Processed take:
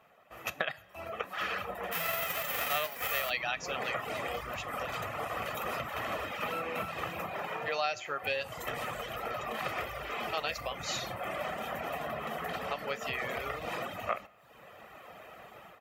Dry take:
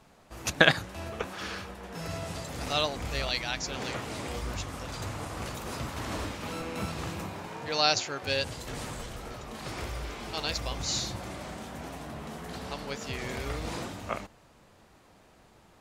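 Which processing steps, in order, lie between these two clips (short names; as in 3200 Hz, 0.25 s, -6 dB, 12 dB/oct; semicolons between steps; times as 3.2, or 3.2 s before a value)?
1.91–3.29 spectral whitening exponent 0.3; reverb removal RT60 0.69 s; on a send at -16 dB: reverb, pre-delay 3 ms; on the sum: AGC gain up to 13.5 dB; band shelf 6300 Hz -14 dB; compressor 5:1, threshold -30 dBFS, peak gain reduction 15.5 dB; HPF 600 Hz 6 dB/oct; comb 1.6 ms, depth 45%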